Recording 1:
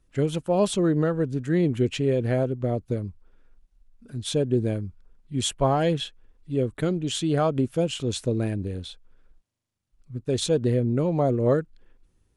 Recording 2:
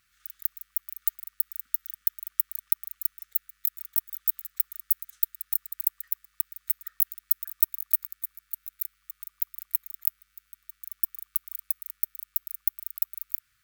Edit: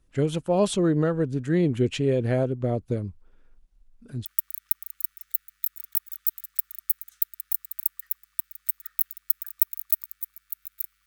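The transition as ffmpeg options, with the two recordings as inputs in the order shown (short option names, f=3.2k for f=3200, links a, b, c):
-filter_complex "[0:a]apad=whole_dur=11.06,atrim=end=11.06,atrim=end=4.252[a];[1:a]atrim=start=2.258:end=9.07[b];[a][b]acrossfade=d=0.004:c1=hsin:c2=hsin"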